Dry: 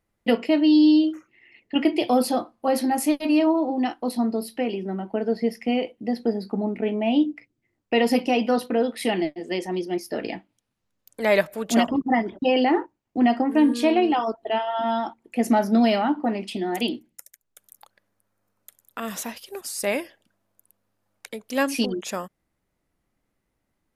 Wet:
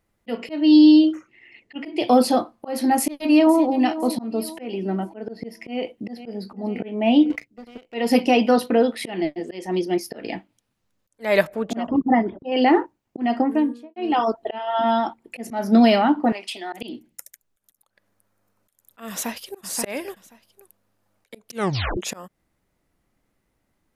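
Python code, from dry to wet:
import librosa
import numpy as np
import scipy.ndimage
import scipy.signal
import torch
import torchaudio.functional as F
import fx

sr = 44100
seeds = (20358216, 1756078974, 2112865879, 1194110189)

y = fx.lowpass(x, sr, hz=10000.0, slope=12, at=(0.83, 2.31))
y = fx.echo_throw(y, sr, start_s=2.95, length_s=0.78, ms=510, feedback_pct=40, wet_db=-14.0)
y = fx.echo_throw(y, sr, start_s=5.65, length_s=0.62, ms=500, feedback_pct=60, wet_db=-16.0)
y = fx.leveller(y, sr, passes=2, at=(7.3, 7.94))
y = fx.high_shelf(y, sr, hz=fx.line((8.96, 5700.0), (9.46, 8700.0)), db=-7.0, at=(8.96, 9.46), fade=0.02)
y = fx.lowpass(y, sr, hz=1200.0, slope=6, at=(11.47, 12.52))
y = fx.studio_fade_out(y, sr, start_s=13.23, length_s=0.73)
y = fx.notch(y, sr, hz=6300.0, q=11.0, at=(14.64, 15.45))
y = fx.highpass(y, sr, hz=810.0, slope=12, at=(16.32, 16.73))
y = fx.echo_throw(y, sr, start_s=19.1, length_s=0.51, ms=530, feedback_pct=10, wet_db=-3.5)
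y = fx.edit(y, sr, fx.tape_stop(start_s=21.51, length_s=0.46), tone=tone)
y = fx.auto_swell(y, sr, attack_ms=251.0)
y = y * librosa.db_to_amplitude(4.5)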